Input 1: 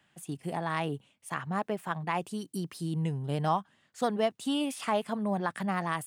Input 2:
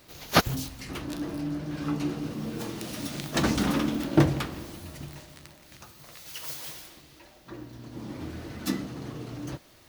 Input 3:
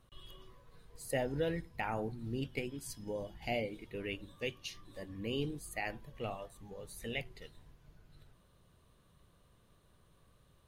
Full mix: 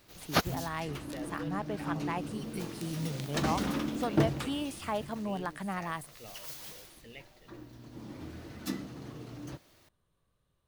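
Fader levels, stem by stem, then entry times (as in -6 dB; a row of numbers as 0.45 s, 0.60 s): -5.0 dB, -6.5 dB, -10.5 dB; 0.00 s, 0.00 s, 0.00 s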